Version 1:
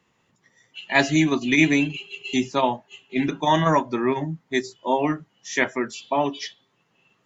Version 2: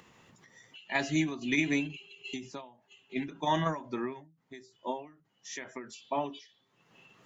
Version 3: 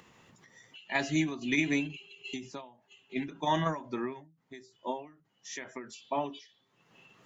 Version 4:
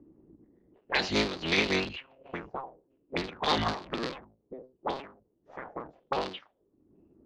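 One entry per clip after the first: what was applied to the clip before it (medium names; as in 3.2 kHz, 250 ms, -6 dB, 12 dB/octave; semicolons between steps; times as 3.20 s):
upward compressor, threshold -36 dBFS; endings held to a fixed fall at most 120 dB/s; trim -9 dB
no audible change
cycle switcher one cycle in 3, inverted; touch-sensitive low-pass 280–4400 Hz up, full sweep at -31 dBFS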